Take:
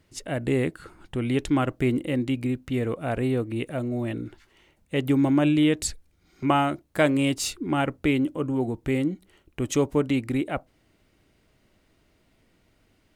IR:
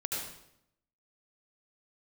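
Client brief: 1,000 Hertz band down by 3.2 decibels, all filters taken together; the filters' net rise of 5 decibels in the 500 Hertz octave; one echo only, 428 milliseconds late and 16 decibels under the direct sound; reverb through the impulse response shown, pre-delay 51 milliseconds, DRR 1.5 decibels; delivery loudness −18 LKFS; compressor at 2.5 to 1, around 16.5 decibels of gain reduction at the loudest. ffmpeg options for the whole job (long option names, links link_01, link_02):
-filter_complex "[0:a]equalizer=frequency=500:width_type=o:gain=8.5,equalizer=frequency=1000:width_type=o:gain=-9,acompressor=threshold=-40dB:ratio=2.5,aecho=1:1:428:0.158,asplit=2[link_01][link_02];[1:a]atrim=start_sample=2205,adelay=51[link_03];[link_02][link_03]afir=irnorm=-1:irlink=0,volume=-5.5dB[link_04];[link_01][link_04]amix=inputs=2:normalize=0,volume=17dB"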